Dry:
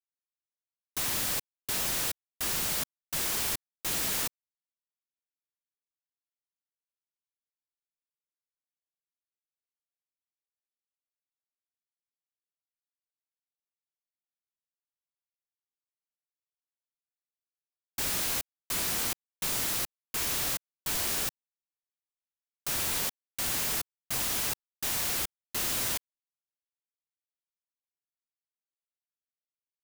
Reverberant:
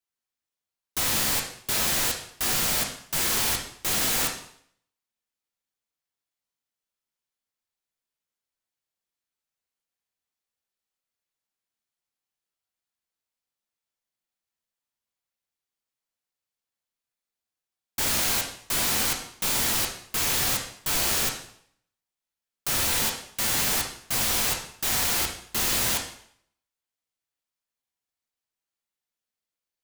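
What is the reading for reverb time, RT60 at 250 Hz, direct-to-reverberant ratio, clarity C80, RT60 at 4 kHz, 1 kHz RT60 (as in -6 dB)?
0.65 s, 0.60 s, 1.0 dB, 9.5 dB, 0.60 s, 0.65 s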